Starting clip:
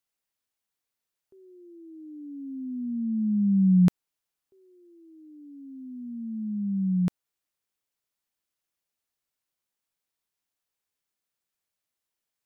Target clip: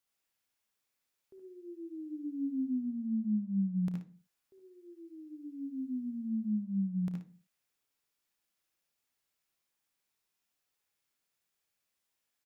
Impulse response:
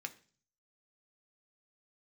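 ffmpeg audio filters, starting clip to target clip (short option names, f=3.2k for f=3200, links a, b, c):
-filter_complex "[0:a]acompressor=threshold=-35dB:ratio=5,aecho=1:1:32|57:0.158|0.335,asplit=2[a][b];[1:a]atrim=start_sample=2205,afade=t=out:st=0.31:d=0.01,atrim=end_sample=14112,adelay=72[c];[b][c]afir=irnorm=-1:irlink=0,volume=1dB[d];[a][d]amix=inputs=2:normalize=0"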